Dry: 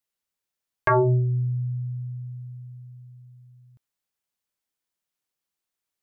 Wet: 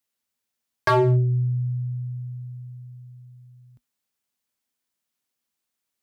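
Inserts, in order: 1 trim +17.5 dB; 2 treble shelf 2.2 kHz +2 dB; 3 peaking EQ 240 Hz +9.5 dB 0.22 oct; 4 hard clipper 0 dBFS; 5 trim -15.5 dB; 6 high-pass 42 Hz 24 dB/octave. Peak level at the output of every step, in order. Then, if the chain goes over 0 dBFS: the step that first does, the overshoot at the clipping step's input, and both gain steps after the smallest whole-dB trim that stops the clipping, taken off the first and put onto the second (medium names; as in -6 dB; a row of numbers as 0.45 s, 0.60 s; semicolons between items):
+3.5 dBFS, +4.0 dBFS, +4.5 dBFS, 0.0 dBFS, -15.5 dBFS, -11.0 dBFS; step 1, 4.5 dB; step 1 +12.5 dB, step 5 -10.5 dB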